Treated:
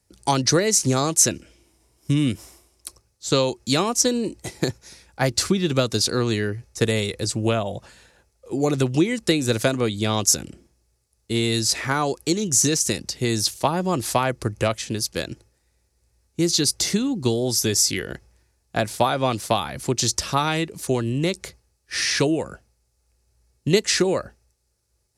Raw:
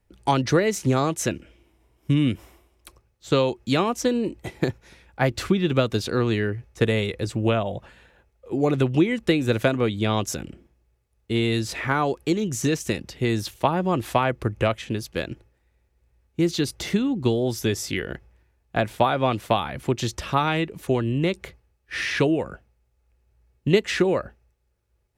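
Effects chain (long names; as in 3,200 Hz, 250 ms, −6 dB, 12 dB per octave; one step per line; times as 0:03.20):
high-pass filter 51 Hz
flat-topped bell 7,000 Hz +14 dB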